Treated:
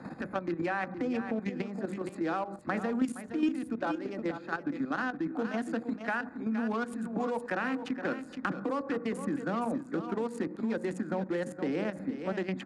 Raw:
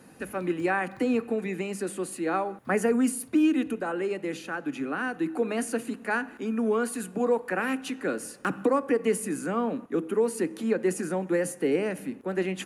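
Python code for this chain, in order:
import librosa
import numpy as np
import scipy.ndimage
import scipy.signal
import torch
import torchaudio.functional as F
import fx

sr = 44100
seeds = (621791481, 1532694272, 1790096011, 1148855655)

p1 = fx.wiener(x, sr, points=15)
p2 = scipy.signal.sosfilt(scipy.signal.butter(2, 5800.0, 'lowpass', fs=sr, output='sos'), p1)
p3 = fx.peak_eq(p2, sr, hz=420.0, db=-10.5, octaves=0.31)
p4 = fx.hum_notches(p3, sr, base_hz=60, count=10)
p5 = fx.level_steps(p4, sr, step_db=11)
p6 = p5 + fx.echo_single(p5, sr, ms=467, db=-11.0, dry=0)
p7 = fx.band_squash(p6, sr, depth_pct=70)
y = p7 * 10.0 ** (2.0 / 20.0)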